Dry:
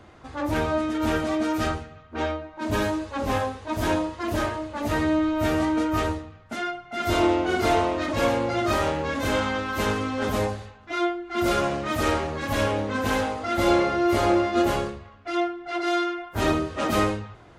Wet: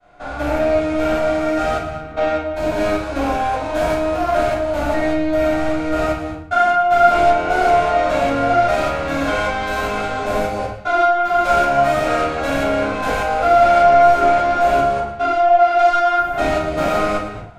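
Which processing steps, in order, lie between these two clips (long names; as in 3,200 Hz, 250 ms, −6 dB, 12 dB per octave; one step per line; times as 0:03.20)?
spectrum averaged block by block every 200 ms
low-shelf EQ 370 Hz −4 dB
in parallel at +3 dB: downward compressor, threshold −32 dBFS, peak gain reduction 12.5 dB
on the sum: feedback echo with a high-pass in the loop 114 ms, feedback 40%, high-pass 420 Hz, level −13.5 dB
soft clipping −20.5 dBFS, distortion −13 dB
hollow resonant body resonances 700/1,400/2,300 Hz, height 12 dB, ringing for 35 ms
downward expander −33 dBFS
rectangular room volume 250 cubic metres, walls furnished, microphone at 6.5 metres
level −7 dB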